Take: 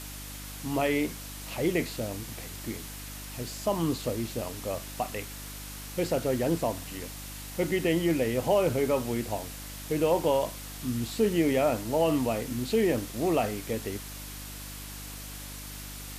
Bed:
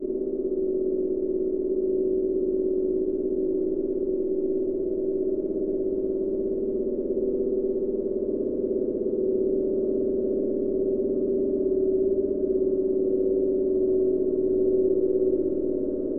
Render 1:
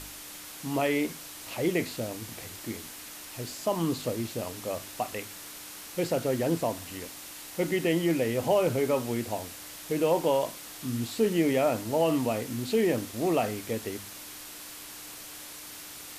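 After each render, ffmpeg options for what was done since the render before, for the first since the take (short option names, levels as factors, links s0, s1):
-af "bandreject=f=50:t=h:w=4,bandreject=f=100:t=h:w=4,bandreject=f=150:t=h:w=4,bandreject=f=200:t=h:w=4,bandreject=f=250:t=h:w=4"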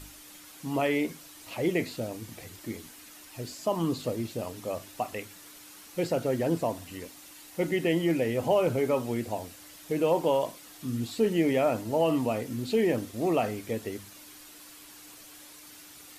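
-af "afftdn=nr=8:nf=-44"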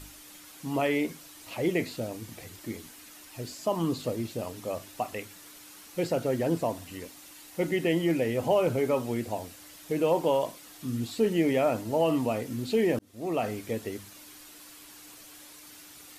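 -filter_complex "[0:a]asplit=2[s0][s1];[s0]atrim=end=12.99,asetpts=PTS-STARTPTS,afade=t=out:st=12.986:d=0.004:c=hsin[s2];[s1]atrim=start=12.99,asetpts=PTS-STARTPTS,afade=t=in:d=0.53[s3];[s2][s3]concat=n=2:v=0:a=1"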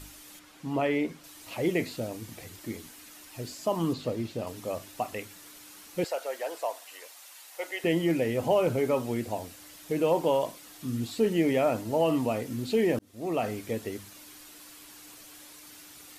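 -filter_complex "[0:a]asettb=1/sr,asplit=3[s0][s1][s2];[s0]atrim=end=0.394[s3];[s1]atrim=start=0.39:end=1.24,asetpts=PTS-STARTPTS,afade=t=in:d=0.004:c=qsin,afade=t=out:st=0.846:d=0.004:c=qsin,lowpass=f=2900:p=1[s4];[s2]atrim=start=1.236[s5];[s3][s4]acrossfade=d=0.004:c1=hsin:c2=qsin[s6];[s6][s5]acrossfade=d=0.004:c1=qsin:c2=hsin,asettb=1/sr,asplit=3[s7][s8][s9];[s7]atrim=end=3.934[s10];[s8]atrim=start=3.93:end=4.47,asetpts=PTS-STARTPTS,afade=t=in:d=0.004:c=qsin,afade=t=out:st=0.536:d=0.004:c=qsin,acrossover=split=5500[s11][s12];[s12]acompressor=threshold=0.00158:ratio=4:attack=1:release=60[s13];[s11][s13]amix=inputs=2:normalize=0[s14];[s9]atrim=start=4.466[s15];[s10][s14]acrossfade=d=0.004:c1=hsin:c2=qsin[s16];[s16][s15]acrossfade=d=0.004:c1=qsin:c2=hsin,asettb=1/sr,asplit=3[s17][s18][s19];[s17]atrim=end=6.044[s20];[s18]atrim=start=6.04:end=7.84,asetpts=PTS-STARTPTS,afade=t=in:d=0.004:c=qsin,afade=t=out:st=1.796:d=0.004:c=qsin,highpass=f=570:w=0.5412,highpass=f=570:w=1.3066[s21];[s19]atrim=start=7.836[s22];[s20][s21]acrossfade=d=0.004:c1=hsin:c2=qsin[s23];[s23][s22]acrossfade=d=0.004:c1=qsin:c2=hsin"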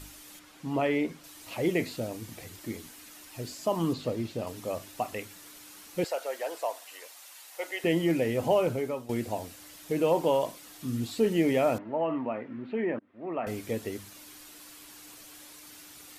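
-filter_complex "[0:a]asettb=1/sr,asplit=3[s0][s1][s2];[s0]atrim=end=11.784[s3];[s1]atrim=start=11.78:end=13.47,asetpts=PTS-STARTPTS,afade=t=in:d=0.004:c=qsin,afade=t=out:st=1.686:d=0.004:c=qsin,highpass=250,equalizer=f=310:t=q:w=4:g=-3,equalizer=f=460:t=q:w=4:g=-7,equalizer=f=740:t=q:w=4:g=-4,lowpass=f=2100:w=0.5412,lowpass=f=2100:w=1.3066[s4];[s2]atrim=start=13.466[s5];[s3][s4]acrossfade=d=0.004:c1=hsin:c2=qsin[s6];[s6][s5]acrossfade=d=0.004:c1=qsin:c2=hsin,asplit=2[s7][s8];[s7]atrim=end=9.09,asetpts=PTS-STARTPTS,afade=t=out:st=8.55:d=0.54:silence=0.211349[s9];[s8]atrim=start=9.09,asetpts=PTS-STARTPTS,afade=t=in:d=0.004:c=hsin:silence=0.211349[s10];[s9][s10]concat=n=2:v=0:a=1"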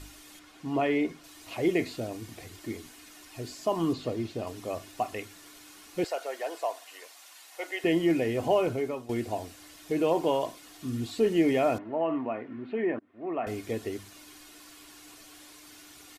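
-af "highshelf=f=11000:g=-10,aecho=1:1:2.8:0.34"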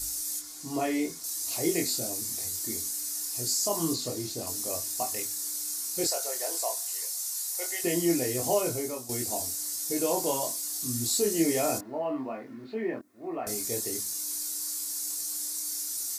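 -af "flanger=delay=22.5:depth=2.1:speed=0.4,aexciter=amount=7.3:drive=9.1:freq=4500"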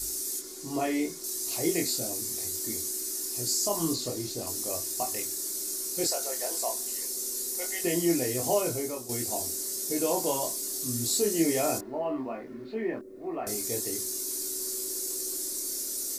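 -filter_complex "[1:a]volume=0.0708[s0];[0:a][s0]amix=inputs=2:normalize=0"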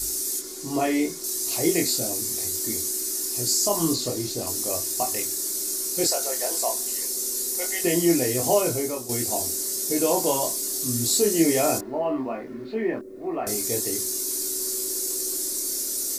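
-af "volume=1.88"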